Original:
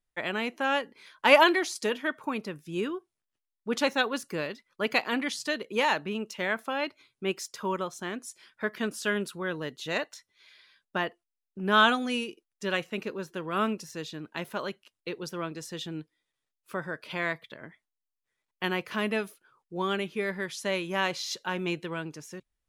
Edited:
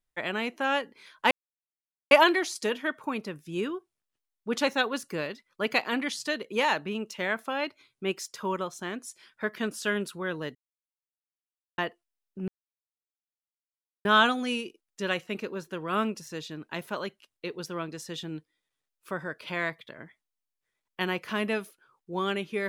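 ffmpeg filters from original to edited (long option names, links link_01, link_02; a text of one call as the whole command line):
ffmpeg -i in.wav -filter_complex "[0:a]asplit=5[link_01][link_02][link_03][link_04][link_05];[link_01]atrim=end=1.31,asetpts=PTS-STARTPTS,afade=type=out:start_time=1.306:duration=0.004:curve=hsin,apad=pad_dur=0.8[link_06];[link_02]atrim=start=1.31:end=9.75,asetpts=PTS-STARTPTS,afade=type=in:duration=0.004:curve=hsin,afade=type=out:start_time=8.436:duration=0.004:curve=hsin[link_07];[link_03]atrim=start=9.75:end=10.98,asetpts=PTS-STARTPTS,volume=0[link_08];[link_04]atrim=start=10.98:end=11.68,asetpts=PTS-STARTPTS,afade=type=in:duration=0.004:curve=hsin,afade=type=out:start_time=0.696:duration=0.004:curve=hsin,apad=pad_dur=1.57[link_09];[link_05]atrim=start=11.68,asetpts=PTS-STARTPTS,afade=type=in:duration=0.004:curve=hsin[link_10];[link_06][link_07][link_08][link_09][link_10]concat=n=5:v=0:a=1" out.wav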